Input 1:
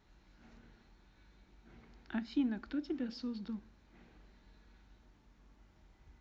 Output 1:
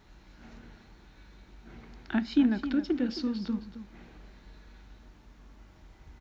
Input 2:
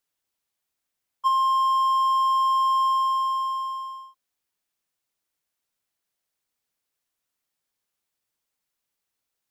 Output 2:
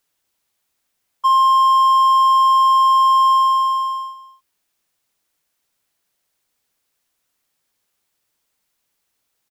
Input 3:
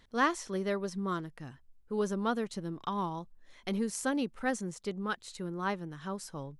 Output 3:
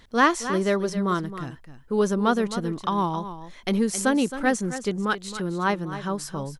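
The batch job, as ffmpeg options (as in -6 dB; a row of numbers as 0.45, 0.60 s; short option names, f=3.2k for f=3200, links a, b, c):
-filter_complex "[0:a]asplit=2[a][b];[b]aecho=0:1:267:0.251[c];[a][c]amix=inputs=2:normalize=0,alimiter=level_in=16.5dB:limit=-1dB:release=50:level=0:latency=1,volume=-7dB"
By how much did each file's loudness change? +9.5, +8.5, +9.5 LU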